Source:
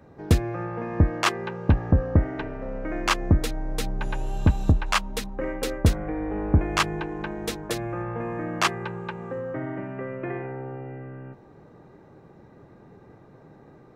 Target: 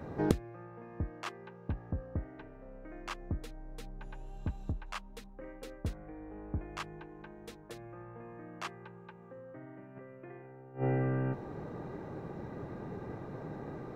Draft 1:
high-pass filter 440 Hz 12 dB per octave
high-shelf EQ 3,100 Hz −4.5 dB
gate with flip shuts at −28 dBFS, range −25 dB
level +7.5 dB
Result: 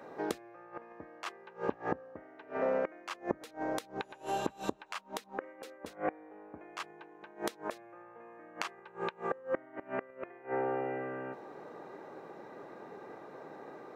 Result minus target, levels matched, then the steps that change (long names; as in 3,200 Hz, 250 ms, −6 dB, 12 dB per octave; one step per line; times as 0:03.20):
500 Hz band +3.5 dB
remove: high-pass filter 440 Hz 12 dB per octave